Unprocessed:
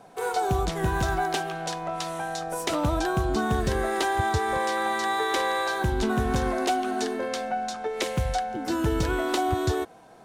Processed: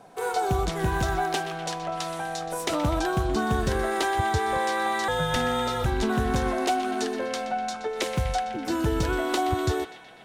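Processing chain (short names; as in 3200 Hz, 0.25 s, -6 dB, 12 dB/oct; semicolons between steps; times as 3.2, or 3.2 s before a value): narrowing echo 0.124 s, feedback 77%, band-pass 2400 Hz, level -10 dB; 5.08–5.86 frequency shift -280 Hz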